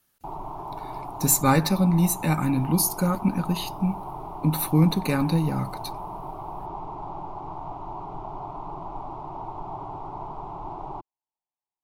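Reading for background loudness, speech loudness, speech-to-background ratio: -36.5 LUFS, -23.5 LUFS, 13.0 dB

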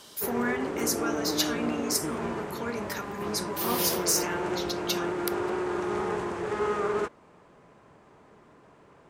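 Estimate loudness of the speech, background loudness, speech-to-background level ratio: -31.0 LUFS, -31.5 LUFS, 0.5 dB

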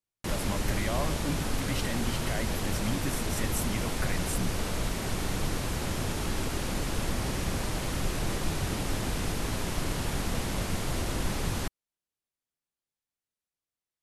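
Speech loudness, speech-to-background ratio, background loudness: -36.5 LUFS, -4.5 dB, -32.0 LUFS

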